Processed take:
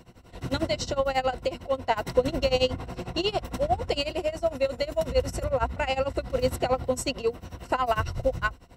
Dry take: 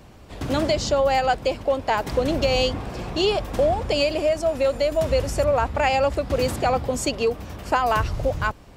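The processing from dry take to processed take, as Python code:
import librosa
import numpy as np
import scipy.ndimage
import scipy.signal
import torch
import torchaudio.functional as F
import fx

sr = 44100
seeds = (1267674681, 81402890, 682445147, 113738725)

y = x * (1.0 - 0.92 / 2.0 + 0.92 / 2.0 * np.cos(2.0 * np.pi * 11.0 * (np.arange(len(x)) / sr)))
y = fx.ripple_eq(y, sr, per_octave=2.0, db=8)
y = y * librosa.db_to_amplitude(-2.0)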